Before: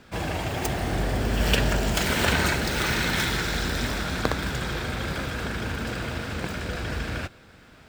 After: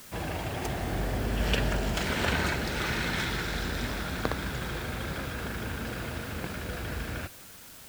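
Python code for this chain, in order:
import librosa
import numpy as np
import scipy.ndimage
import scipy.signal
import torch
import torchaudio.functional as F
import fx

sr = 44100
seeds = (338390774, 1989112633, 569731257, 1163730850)

p1 = fx.high_shelf(x, sr, hz=7300.0, db=-9.5)
p2 = fx.quant_dither(p1, sr, seeds[0], bits=6, dither='triangular')
p3 = p1 + F.gain(torch.from_numpy(p2), -4.0).numpy()
y = F.gain(torch.from_numpy(p3), -9.0).numpy()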